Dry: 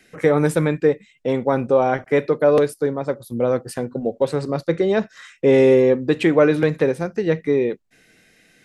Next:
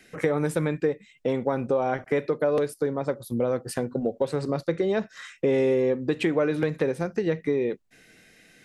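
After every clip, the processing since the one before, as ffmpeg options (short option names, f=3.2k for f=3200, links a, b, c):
-af "acompressor=threshold=-23dB:ratio=3"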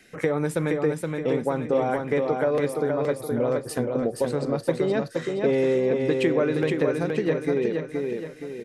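-af "aecho=1:1:471|942|1413|1884|2355|2826:0.631|0.278|0.122|0.0537|0.0236|0.0104"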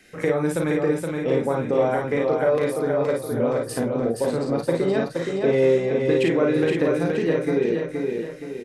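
-af "aecho=1:1:36|53:0.562|0.631"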